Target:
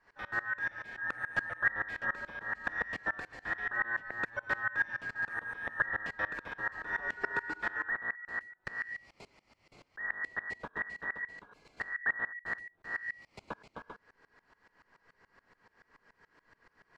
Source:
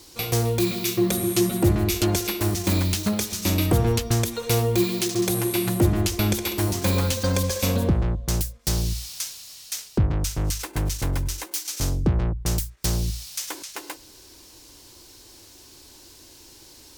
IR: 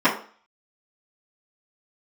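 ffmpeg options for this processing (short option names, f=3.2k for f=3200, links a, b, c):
-af "afftfilt=real='real(if(between(b,1,1012),(2*floor((b-1)/92)+1)*92-b,b),0)':imag='imag(if(between(b,1,1012),(2*floor((b-1)/92)+1)*92-b,b),0)*if(between(b,1,1012),-1,1)':win_size=2048:overlap=0.75,lowpass=1.1k,aeval=exprs='val(0)*pow(10,-23*if(lt(mod(-7*n/s,1),2*abs(-7)/1000),1-mod(-7*n/s,1)/(2*abs(-7)/1000),(mod(-7*n/s,1)-2*abs(-7)/1000)/(1-2*abs(-7)/1000))/20)':c=same,volume=2dB"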